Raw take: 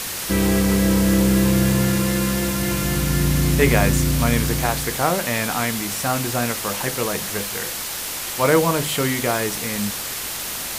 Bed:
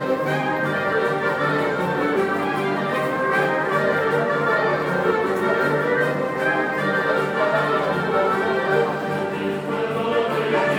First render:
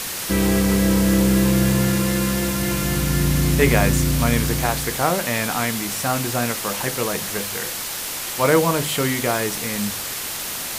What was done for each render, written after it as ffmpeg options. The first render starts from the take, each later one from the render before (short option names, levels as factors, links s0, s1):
-af "bandreject=f=50:t=h:w=4,bandreject=f=100:t=h:w=4"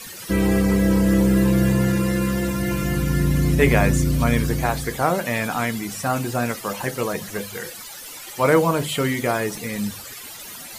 -af "afftdn=nr=15:nf=-29"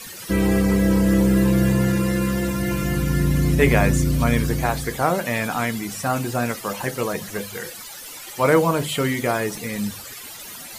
-af anull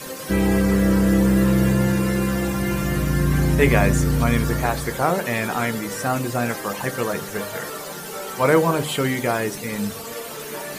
-filter_complex "[1:a]volume=0.211[s0];[0:a][s0]amix=inputs=2:normalize=0"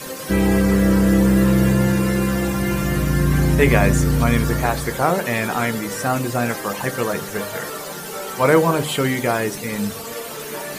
-af "volume=1.26,alimiter=limit=0.708:level=0:latency=1"